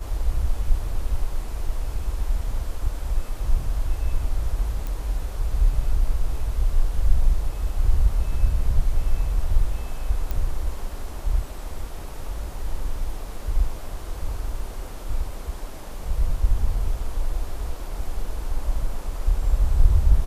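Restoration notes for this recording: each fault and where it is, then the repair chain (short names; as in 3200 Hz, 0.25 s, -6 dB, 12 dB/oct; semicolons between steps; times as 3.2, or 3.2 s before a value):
4.87 pop
10.31 pop -15 dBFS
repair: de-click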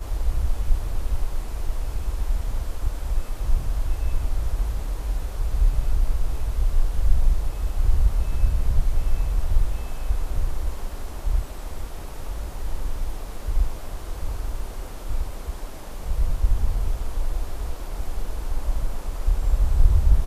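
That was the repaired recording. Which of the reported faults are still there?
none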